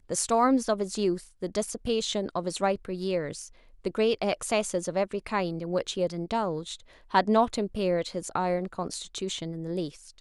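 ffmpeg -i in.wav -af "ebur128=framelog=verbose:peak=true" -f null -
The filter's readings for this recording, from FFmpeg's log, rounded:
Integrated loudness:
  I:         -28.8 LUFS
  Threshold: -39.0 LUFS
Loudness range:
  LRA:         1.9 LU
  Threshold: -49.1 LUFS
  LRA low:   -30.2 LUFS
  LRA high:  -28.2 LUFS
True peak:
  Peak:      -10.0 dBFS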